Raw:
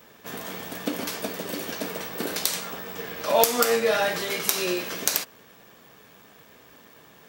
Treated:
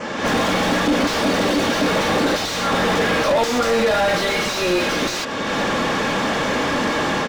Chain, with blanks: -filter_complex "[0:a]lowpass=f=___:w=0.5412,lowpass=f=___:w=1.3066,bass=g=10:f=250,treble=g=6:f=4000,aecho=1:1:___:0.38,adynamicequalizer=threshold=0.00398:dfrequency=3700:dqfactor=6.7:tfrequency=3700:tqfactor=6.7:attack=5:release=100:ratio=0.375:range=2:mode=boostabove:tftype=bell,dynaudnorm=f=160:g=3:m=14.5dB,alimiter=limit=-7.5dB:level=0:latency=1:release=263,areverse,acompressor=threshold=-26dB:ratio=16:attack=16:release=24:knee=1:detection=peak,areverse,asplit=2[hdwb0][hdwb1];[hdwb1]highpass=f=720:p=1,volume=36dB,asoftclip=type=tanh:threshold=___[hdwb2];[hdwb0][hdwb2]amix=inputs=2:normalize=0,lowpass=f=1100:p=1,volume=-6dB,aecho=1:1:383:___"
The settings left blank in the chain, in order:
7100, 7100, 3.6, -8dB, 0.133